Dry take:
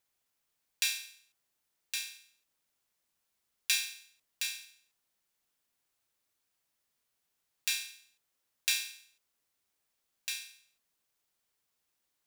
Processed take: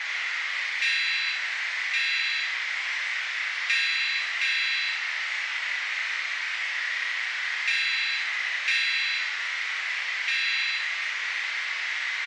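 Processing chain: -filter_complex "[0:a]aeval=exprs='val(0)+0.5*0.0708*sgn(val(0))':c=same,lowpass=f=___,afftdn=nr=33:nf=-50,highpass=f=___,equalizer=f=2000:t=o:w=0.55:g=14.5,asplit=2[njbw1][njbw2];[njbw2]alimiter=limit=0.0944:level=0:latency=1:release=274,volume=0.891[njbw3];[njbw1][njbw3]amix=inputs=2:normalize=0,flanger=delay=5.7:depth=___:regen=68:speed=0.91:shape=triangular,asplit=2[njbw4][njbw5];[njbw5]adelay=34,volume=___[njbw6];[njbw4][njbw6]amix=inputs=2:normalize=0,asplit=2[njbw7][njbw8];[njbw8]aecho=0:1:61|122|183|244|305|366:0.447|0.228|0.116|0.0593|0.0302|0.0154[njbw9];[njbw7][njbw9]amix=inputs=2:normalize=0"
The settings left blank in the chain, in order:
3300, 1400, 3.6, 0.473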